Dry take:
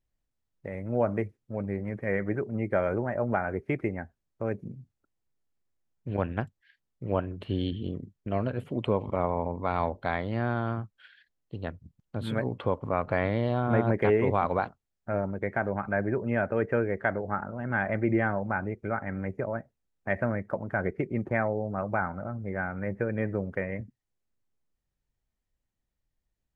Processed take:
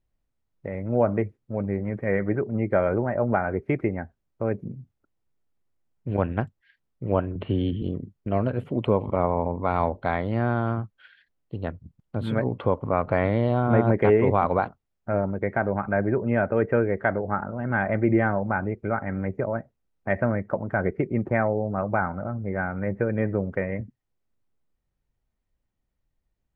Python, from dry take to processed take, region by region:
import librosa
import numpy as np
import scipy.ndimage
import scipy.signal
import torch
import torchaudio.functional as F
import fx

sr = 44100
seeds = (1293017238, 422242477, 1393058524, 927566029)

y = fx.chain(x, sr, fx.lowpass(hz=3400.0, slope=24),
    fx.notch(hz=1700.0, q=21.0),
    fx.band_squash(depth_pct=40), at=(7.35, 7.82))
y = fx.high_shelf(y, sr, hz=3500.0, db=-11.5)
y = fx.notch(y, sr, hz=1700.0, q=24.0)
y = y * librosa.db_to_amplitude(5.0)